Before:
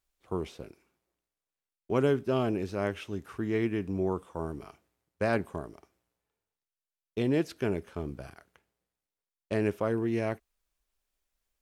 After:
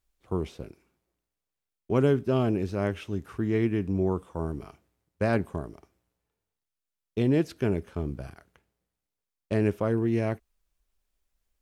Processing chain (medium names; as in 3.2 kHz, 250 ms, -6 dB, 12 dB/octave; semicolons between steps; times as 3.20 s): bass shelf 260 Hz +8 dB